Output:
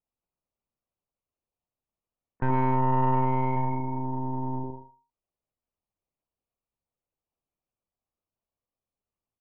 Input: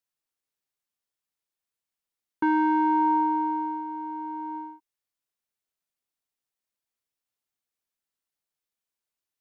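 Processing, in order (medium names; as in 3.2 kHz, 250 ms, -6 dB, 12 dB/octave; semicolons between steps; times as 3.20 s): local Wiener filter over 25 samples; feedback delay 62 ms, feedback 41%, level -4.5 dB; monotone LPC vocoder at 8 kHz 130 Hz; in parallel at +0.5 dB: compression, threshold -33 dBFS, peak gain reduction 14.5 dB; on the sum: spectral gate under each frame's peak -30 dB strong; 3.56–4.64 s: comb 1.2 ms, depth 45%; saturation -15.5 dBFS, distortion -15 dB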